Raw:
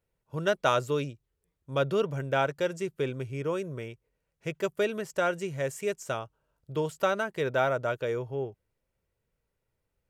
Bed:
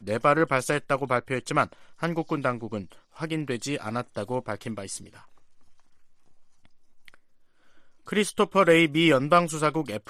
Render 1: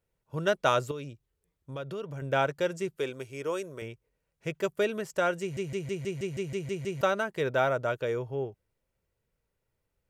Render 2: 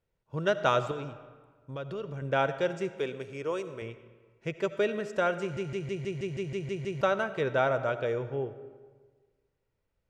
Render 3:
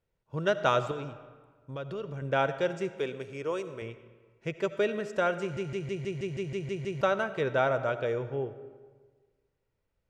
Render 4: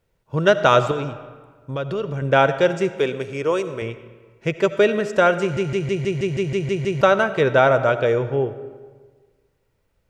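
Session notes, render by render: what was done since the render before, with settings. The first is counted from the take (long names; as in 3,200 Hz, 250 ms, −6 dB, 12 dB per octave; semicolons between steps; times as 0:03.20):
0:00.91–0:02.22: downward compressor 3 to 1, threshold −37 dBFS; 0:02.97–0:03.82: bass and treble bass −12 dB, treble +6 dB; 0:05.41: stutter in place 0.16 s, 10 plays
high-frequency loss of the air 81 metres; comb and all-pass reverb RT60 1.5 s, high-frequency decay 0.65×, pre-delay 35 ms, DRR 12 dB
no processing that can be heard
level +11.5 dB; brickwall limiter −3 dBFS, peak gain reduction 3 dB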